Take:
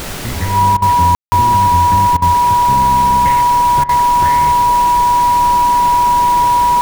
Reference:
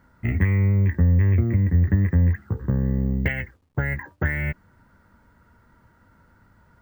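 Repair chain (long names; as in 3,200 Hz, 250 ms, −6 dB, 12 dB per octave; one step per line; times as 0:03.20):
notch filter 970 Hz, Q 30
ambience match 0:01.15–0:01.32
repair the gap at 0:00.77/0:02.17/0:03.84, 49 ms
broadband denoise 30 dB, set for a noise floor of −20 dBFS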